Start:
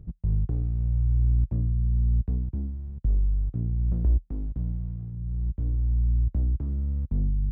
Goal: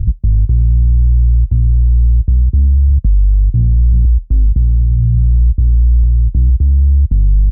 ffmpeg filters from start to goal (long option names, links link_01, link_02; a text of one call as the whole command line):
ffmpeg -i in.wav -filter_complex "[0:a]firequalizer=gain_entry='entry(100,0);entry(160,-13);entry(680,-28)':delay=0.05:min_phase=1,acompressor=threshold=-29dB:ratio=5,asettb=1/sr,asplit=3[link_01][link_02][link_03];[link_01]atrim=end=6.034[link_04];[link_02]atrim=start=6.03:end=6.5,asetpts=PTS-STARTPTS,afade=type=in:duration=0.004:curve=qsin,afade=type=out:start_time=0.466:duration=0.004:curve=qsin,aecho=1:1:6.5:0.63,atrim=end_sample=20727[link_05];[link_03]atrim=start=6.496[link_06];[link_04][link_05]acrossfade=duration=0.004:curve1=hsin:curve2=qsin[link_07];[link_07][link_06]acrossfade=duration=0.004:curve1=qsin:curve2=hsin,alimiter=level_in=35dB:limit=-1dB:release=50:level=0:latency=1,volume=-4dB" out.wav